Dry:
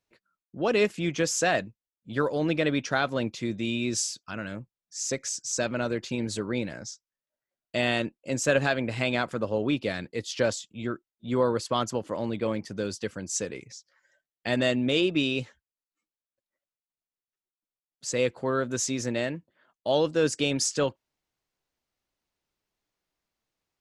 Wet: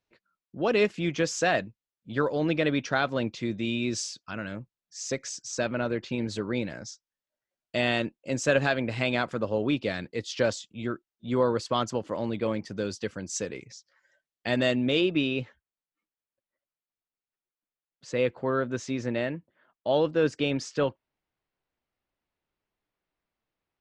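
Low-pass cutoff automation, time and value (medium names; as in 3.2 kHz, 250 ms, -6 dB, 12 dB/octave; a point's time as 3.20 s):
5.47 s 5.4 kHz
5.79 s 3.1 kHz
6.67 s 6.4 kHz
14.72 s 6.4 kHz
15.30 s 3 kHz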